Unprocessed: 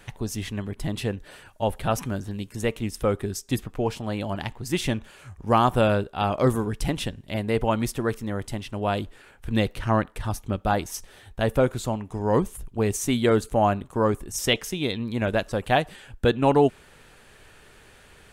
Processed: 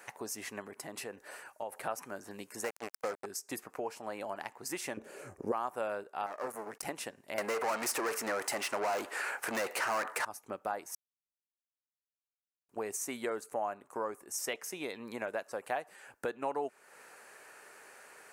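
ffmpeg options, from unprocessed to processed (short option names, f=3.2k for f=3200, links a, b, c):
-filter_complex "[0:a]asettb=1/sr,asplit=3[a][b][c];[a]atrim=end=0.674[d];[b]atrim=start=0.67:end=1.72,asetpts=PTS-STARTPTS,afade=t=in:d=0.004:c=qsin,afade=t=out:st=1.046:d=0.004:c=qsin,acompressor=threshold=-31dB:ratio=2.5:attack=3.2:release=140:knee=1:detection=peak[e];[c]atrim=start=1.716[f];[d][e]acrossfade=d=0.004:c1=hsin:c2=qsin[g];[g][f]acrossfade=d=0.004:c1=qsin:c2=hsin,asettb=1/sr,asplit=3[h][i][j];[h]atrim=end=2.644[k];[i]atrim=start=2.64:end=3.26,asetpts=PTS-STARTPTS,afade=t=in:d=0.004:c=qsin,afade=t=out:st=0.616:d=0.004:c=qsin,acrusher=bits=3:mix=0:aa=0.5[l];[j]atrim=start=3.256[m];[k][l]acrossfade=d=0.004:c1=hsin:c2=qsin[n];[n][m]acrossfade=d=0.004:c1=qsin:c2=hsin,asettb=1/sr,asplit=3[o][p][q];[o]atrim=end=4.974[r];[p]atrim=start=4.97:end=5.52,asetpts=PTS-STARTPTS,afade=t=in:d=0.004:c=qsin,afade=t=out:st=0.546:d=0.004:c=qsin,lowshelf=f=650:t=q:w=1.5:g=12.5[s];[q]atrim=start=5.516[t];[r][s]acrossfade=d=0.004:c1=hsin:c2=qsin[u];[u][t]acrossfade=d=0.004:c1=qsin:c2=hsin,asettb=1/sr,asplit=3[v][w][x];[v]atrim=end=6.264[y];[w]atrim=start=6.26:end=6.83,asetpts=PTS-STARTPTS,afade=t=in:d=0.004:c=qsin,afade=t=out:st=0.566:d=0.004:c=qsin,aeval=exprs='max(val(0),0)':c=same[z];[x]atrim=start=6.826[aa];[y][z]acrossfade=d=0.004:c1=hsin:c2=qsin[ab];[ab][aa]acrossfade=d=0.004:c1=qsin:c2=hsin,asettb=1/sr,asplit=3[ac][ad][ae];[ac]atrim=end=7.384[af];[ad]atrim=start=7.38:end=10.25,asetpts=PTS-STARTPTS,afade=t=in:d=0.004:c=qsin,afade=t=out:st=2.866:d=0.004:c=qsin,asplit=2[ag][ah];[ah]highpass=f=720:p=1,volume=34dB,asoftclip=type=tanh:threshold=-8.5dB[ai];[ag][ai]amix=inputs=2:normalize=0,lowpass=f=7.3k:p=1,volume=-6dB[aj];[ae]atrim=start=10.246[ak];[af][aj]acrossfade=d=0.004:c1=hsin:c2=qsin[al];[al][ak]acrossfade=d=0.004:c1=qsin:c2=hsin,asplit=3[am][an][ao];[am]atrim=end=10.95,asetpts=PTS-STARTPTS,afade=t=out:st=10.946:d=0.004:c=hsin[ap];[an]atrim=start=10.95:end=12.69,asetpts=PTS-STARTPTS,volume=0[aq];[ao]atrim=start=12.69,asetpts=PTS-STARTPTS,afade=t=in:d=0.004:c=hsin[ar];[ap][aq][ar]concat=n=3:v=0:a=1,highpass=540,equalizer=f=3.4k:w=2.2:g=-15,acompressor=threshold=-40dB:ratio=2.5,volume=1.5dB"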